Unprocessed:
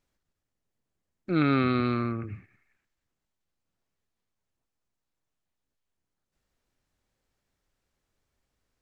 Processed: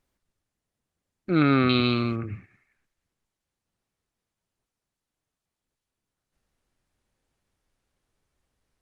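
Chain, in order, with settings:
0:01.69–0:02.16: high shelf with overshoot 2,300 Hz +8.5 dB, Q 3
level +3.5 dB
Opus 32 kbit/s 48,000 Hz

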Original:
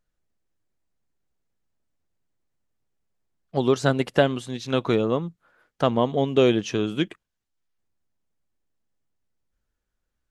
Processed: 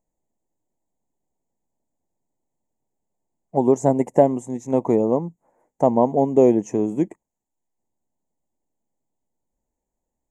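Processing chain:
drawn EQ curve 100 Hz 0 dB, 250 Hz +9 dB, 440 Hz +7 dB, 920 Hz +12 dB, 1,400 Hz −20 dB, 2,000 Hz −2 dB, 3,100 Hz −23 dB, 4,400 Hz −25 dB, 6,900 Hz +10 dB, 10,000 Hz 0 dB
level −4 dB

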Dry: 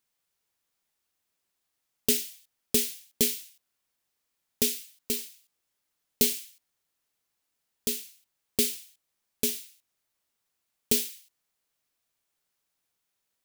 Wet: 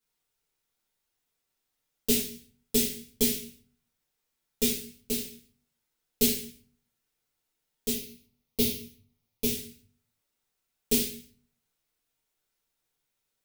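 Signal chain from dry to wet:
0:07.92–0:09.47: thirty-one-band graphic EQ 100 Hz +12 dB, 1,600 Hz −10 dB, 8,000 Hz −10 dB
rectangular room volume 33 cubic metres, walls mixed, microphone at 1.5 metres
level −9 dB

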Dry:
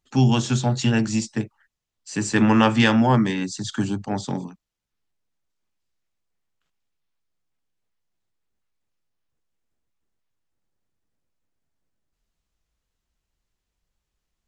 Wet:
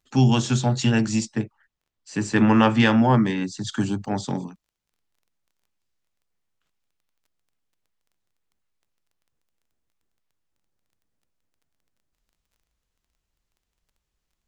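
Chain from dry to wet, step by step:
surface crackle 14 per second −53 dBFS
0:01.25–0:03.67: high-shelf EQ 4,800 Hz −9 dB

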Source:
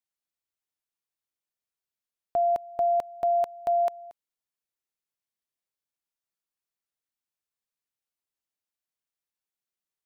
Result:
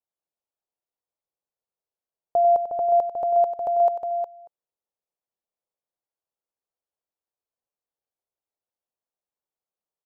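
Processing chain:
drawn EQ curve 270 Hz 0 dB, 510 Hz +9 dB, 830 Hz +6 dB, 2,000 Hz −9 dB
on a send: multi-tap delay 94/361 ms −10.5/−6.5 dB
on the sum: level −2.5 dB

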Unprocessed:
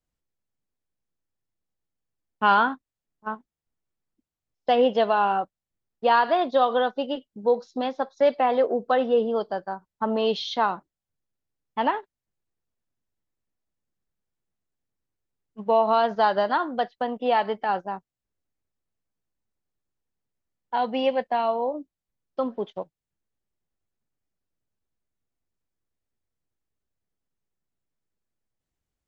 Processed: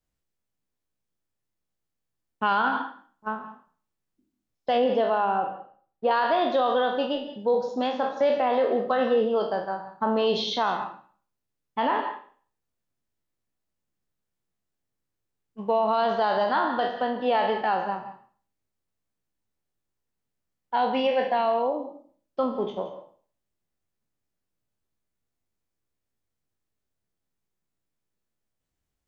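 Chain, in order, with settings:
peak hold with a decay on every bin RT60 0.45 s
0:04.84–0:06.11: high-shelf EQ 2,400 Hz −12 dB
reverb whose tail is shaped and stops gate 200 ms rising, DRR 11 dB
brickwall limiter −14.5 dBFS, peak gain reduction 7.5 dB

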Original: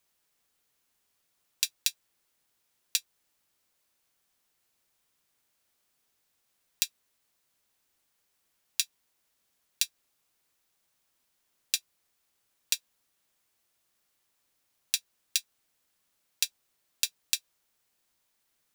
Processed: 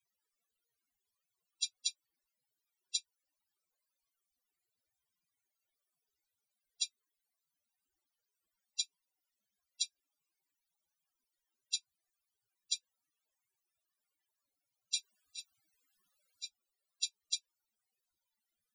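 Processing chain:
0:14.96–0:16.44: compressor whose output falls as the input rises −38 dBFS, ratio −1
spectral peaks only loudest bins 32
level −2 dB

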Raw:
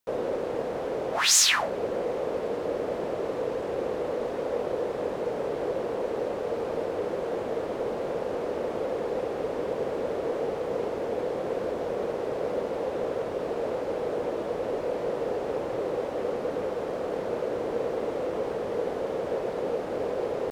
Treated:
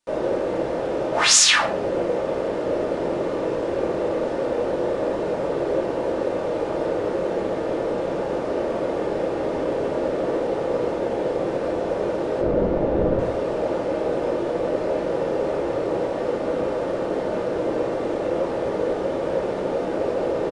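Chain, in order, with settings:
downsampling to 22,050 Hz
0:12.41–0:13.19: RIAA equalisation playback
rectangular room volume 500 cubic metres, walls furnished, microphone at 2.6 metres
level +2 dB

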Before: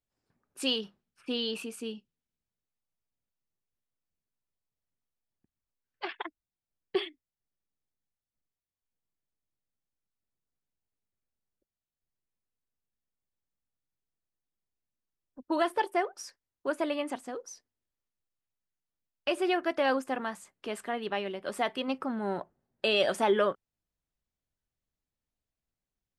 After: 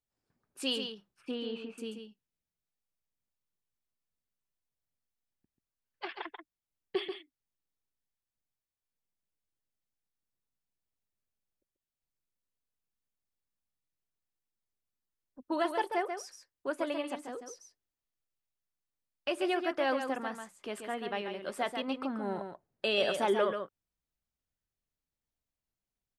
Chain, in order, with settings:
0:01.31–0:01.78: low-pass filter 2,100 Hz 12 dB per octave
single-tap delay 137 ms −7 dB
level −3.5 dB

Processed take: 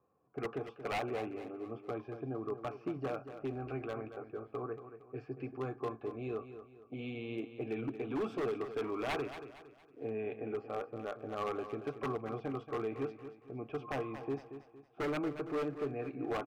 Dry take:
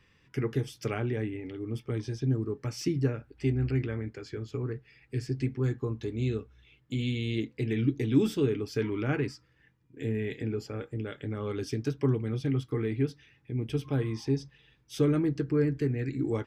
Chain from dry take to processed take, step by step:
low-pass that shuts in the quiet parts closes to 570 Hz, open at −23 dBFS
high shelf with overshoot 2,100 Hz −8 dB, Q 1.5
in parallel at −1 dB: brickwall limiter −23.5 dBFS, peak gain reduction 11 dB
on the sum: formant filter a
wave folding −37.5 dBFS
on a send: repeating echo 230 ms, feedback 38%, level −11 dB
on the sum: level +8 dB

